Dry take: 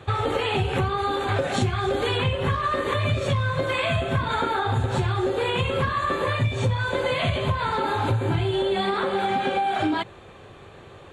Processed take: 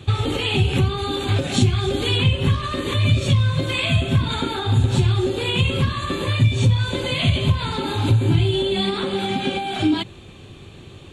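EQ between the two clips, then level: high-order bell 930 Hz -12 dB 2.5 oct; +7.5 dB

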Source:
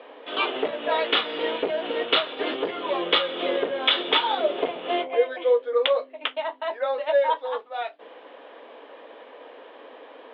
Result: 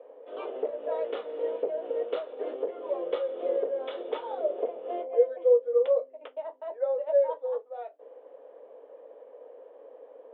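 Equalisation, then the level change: band-pass filter 510 Hz, Q 3.9; 0.0 dB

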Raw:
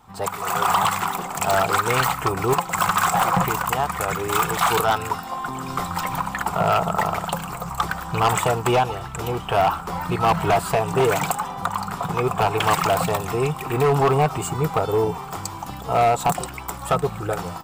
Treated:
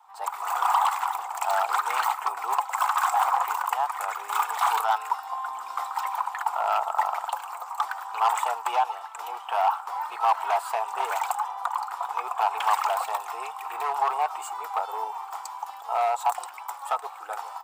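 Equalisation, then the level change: ladder high-pass 770 Hz, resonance 60%; +1.0 dB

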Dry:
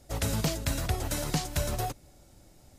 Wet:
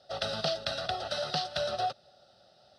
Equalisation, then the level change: cabinet simulation 370–5600 Hz, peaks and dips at 460 Hz -10 dB, 890 Hz -3 dB, 1.7 kHz -9 dB, 3 kHz -4 dB; static phaser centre 1.5 kHz, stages 8; +8.0 dB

